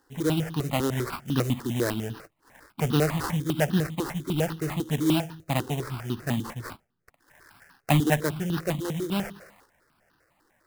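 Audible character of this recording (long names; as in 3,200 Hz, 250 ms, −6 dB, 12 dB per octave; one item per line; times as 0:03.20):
aliases and images of a low sample rate 3,400 Hz, jitter 20%
notches that jump at a steady rate 10 Hz 630–2,200 Hz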